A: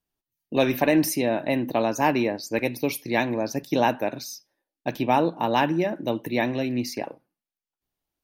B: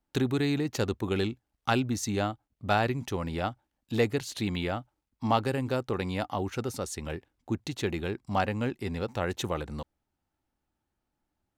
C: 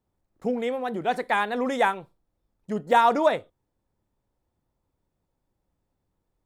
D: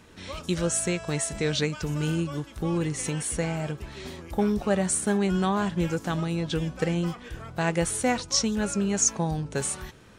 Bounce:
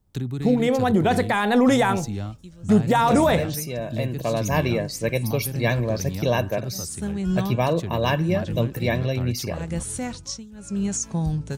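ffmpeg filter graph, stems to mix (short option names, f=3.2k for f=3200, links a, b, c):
-filter_complex "[0:a]aecho=1:1:1.8:0.7,adelay=2500,volume=-16dB[a];[1:a]acrossover=split=190[b][c];[c]acompressor=threshold=-31dB:ratio=2.5[d];[b][d]amix=inputs=2:normalize=0,volume=-6.5dB,asplit=2[e][f];[2:a]bandreject=f=117.4:t=h:w=4,bandreject=f=234.8:t=h:w=4,bandreject=f=352.2:t=h:w=4,bandreject=f=469.6:t=h:w=4,bandreject=f=587:t=h:w=4,bandreject=f=704.4:t=h:w=4,bandreject=f=821.8:t=h:w=4,volume=1.5dB[g];[3:a]tremolo=f=0.76:d=0.94,adelay=1950,volume=0.5dB[h];[f]apad=whole_len=535112[i];[h][i]sidechaincompress=threshold=-48dB:ratio=6:attack=22:release=433[j];[a][g]amix=inputs=2:normalize=0,dynaudnorm=f=290:g=5:m=13dB,alimiter=limit=-12dB:level=0:latency=1:release=25,volume=0dB[k];[e][j]amix=inputs=2:normalize=0,alimiter=limit=-23dB:level=0:latency=1:release=354,volume=0dB[l];[k][l]amix=inputs=2:normalize=0,bass=f=250:g=12,treble=f=4k:g=6"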